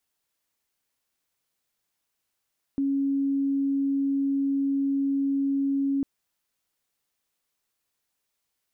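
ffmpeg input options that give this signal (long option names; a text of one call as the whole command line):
ffmpeg -f lavfi -i "sine=frequency=276:duration=3.25:sample_rate=44100,volume=-3.94dB" out.wav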